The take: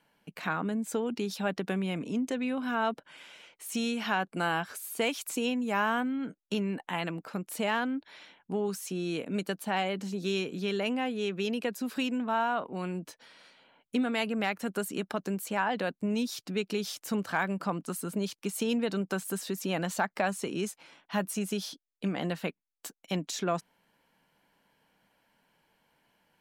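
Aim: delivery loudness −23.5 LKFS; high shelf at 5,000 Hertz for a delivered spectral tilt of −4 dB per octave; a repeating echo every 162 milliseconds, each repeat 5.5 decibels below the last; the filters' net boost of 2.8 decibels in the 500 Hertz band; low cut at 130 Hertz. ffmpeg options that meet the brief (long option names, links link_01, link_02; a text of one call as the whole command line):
ffmpeg -i in.wav -af "highpass=130,equalizer=frequency=500:width_type=o:gain=3.5,highshelf=frequency=5000:gain=8.5,aecho=1:1:162|324|486|648|810|972|1134:0.531|0.281|0.149|0.079|0.0419|0.0222|0.0118,volume=6dB" out.wav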